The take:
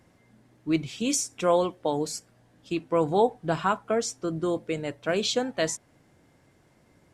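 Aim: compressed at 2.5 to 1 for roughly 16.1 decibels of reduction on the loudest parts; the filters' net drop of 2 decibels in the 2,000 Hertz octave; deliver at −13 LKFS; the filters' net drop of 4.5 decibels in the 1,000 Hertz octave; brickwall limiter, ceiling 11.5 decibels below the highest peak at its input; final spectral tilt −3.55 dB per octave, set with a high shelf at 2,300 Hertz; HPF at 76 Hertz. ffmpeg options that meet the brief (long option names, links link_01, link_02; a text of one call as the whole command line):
ffmpeg -i in.wav -af "highpass=76,equalizer=frequency=1000:width_type=o:gain=-6.5,equalizer=frequency=2000:width_type=o:gain=-5.5,highshelf=frequency=2300:gain=9,acompressor=threshold=-41dB:ratio=2.5,volume=29dB,alimiter=limit=-2.5dB:level=0:latency=1" out.wav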